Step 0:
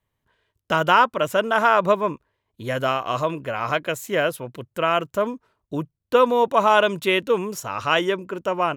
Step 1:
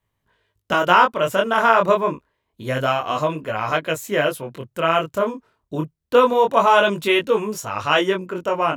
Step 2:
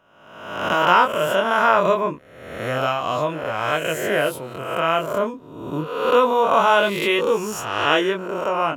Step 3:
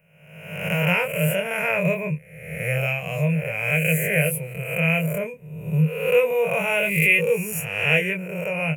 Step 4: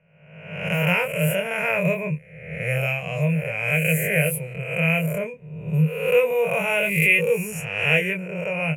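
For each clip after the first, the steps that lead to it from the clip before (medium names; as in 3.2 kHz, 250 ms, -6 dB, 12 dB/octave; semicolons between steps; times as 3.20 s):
chorus 0.27 Hz, delay 18.5 ms, depth 8 ms; trim +5 dB
reverse spectral sustain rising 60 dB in 1.00 s; trim -3.5 dB
FFT filter 110 Hz 0 dB, 160 Hz +15 dB, 280 Hz -27 dB, 480 Hz 0 dB, 1.2 kHz -22 dB, 2.4 kHz +13 dB, 3.5 kHz -22 dB, 6.2 kHz -9 dB, 10 kHz +10 dB
level-controlled noise filter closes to 2.2 kHz, open at -19 dBFS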